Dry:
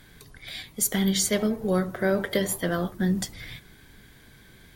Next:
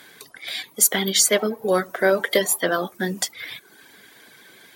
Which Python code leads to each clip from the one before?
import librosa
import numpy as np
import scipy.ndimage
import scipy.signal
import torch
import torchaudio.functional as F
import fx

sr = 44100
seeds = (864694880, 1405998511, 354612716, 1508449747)

y = scipy.signal.sosfilt(scipy.signal.butter(2, 380.0, 'highpass', fs=sr, output='sos'), x)
y = fx.dereverb_blind(y, sr, rt60_s=0.64)
y = y * librosa.db_to_amplitude(8.5)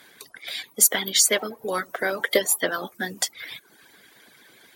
y = fx.hpss(x, sr, part='harmonic', gain_db=-11)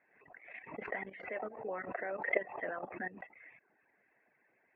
y = fx.level_steps(x, sr, step_db=16)
y = scipy.signal.sosfilt(scipy.signal.cheby1(6, 9, 2700.0, 'lowpass', fs=sr, output='sos'), y)
y = fx.pre_swell(y, sr, db_per_s=84.0)
y = y * librosa.db_to_amplitude(-2.5)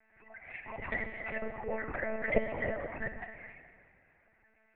y = fx.env_flanger(x, sr, rest_ms=3.5, full_db=-34.0)
y = fx.rev_plate(y, sr, seeds[0], rt60_s=2.0, hf_ratio=0.95, predelay_ms=0, drr_db=6.0)
y = fx.lpc_monotone(y, sr, seeds[1], pitch_hz=220.0, order=10)
y = y * librosa.db_to_amplitude(7.0)